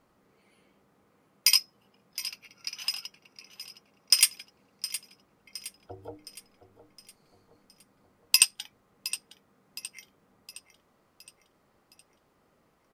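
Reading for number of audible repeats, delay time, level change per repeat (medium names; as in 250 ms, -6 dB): 4, 715 ms, -6.5 dB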